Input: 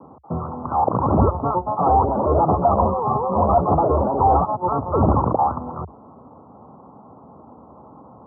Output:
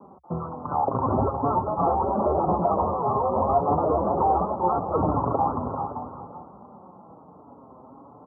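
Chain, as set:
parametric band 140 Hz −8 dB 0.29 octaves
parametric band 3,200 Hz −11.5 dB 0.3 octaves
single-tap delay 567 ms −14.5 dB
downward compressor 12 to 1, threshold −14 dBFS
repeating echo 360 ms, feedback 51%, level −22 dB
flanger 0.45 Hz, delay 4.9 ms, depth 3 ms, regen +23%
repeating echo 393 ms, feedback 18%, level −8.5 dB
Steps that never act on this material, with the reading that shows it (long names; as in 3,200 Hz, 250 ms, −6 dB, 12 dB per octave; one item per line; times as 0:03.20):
parametric band 3,200 Hz: nothing at its input above 1,400 Hz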